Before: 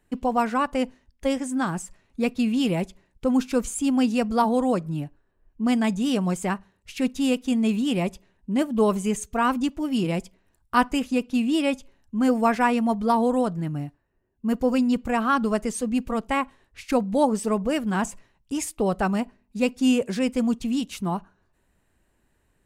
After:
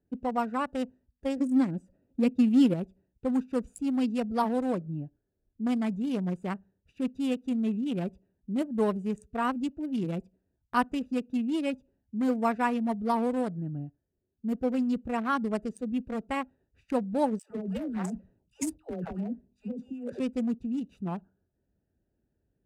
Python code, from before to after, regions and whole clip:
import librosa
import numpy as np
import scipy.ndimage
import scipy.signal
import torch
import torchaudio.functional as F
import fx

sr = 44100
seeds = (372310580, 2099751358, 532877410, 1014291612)

y = fx.chain(x, sr, fx.dynamic_eq(hz=850.0, q=0.75, threshold_db=-40.0, ratio=4.0, max_db=-7),
    fx.small_body(hz=(280.0, 530.0), ring_ms=30, db=11), at=(1.38, 2.74))
y = fx.chain(y, sr, fx.over_compress(threshold_db=-26.0, ratio=-1.0),
    fx.doubler(ms=22.0, db=-14.0),
    fx.dispersion(late='lows', ms=114.0, hz=710.0), at=(17.39, 20.2))
y = fx.wiener(y, sr, points=41)
y = scipy.signal.sosfilt(scipy.signal.butter(2, 54.0, 'highpass', fs=sr, output='sos'), y)
y = F.gain(torch.from_numpy(y), -5.5).numpy()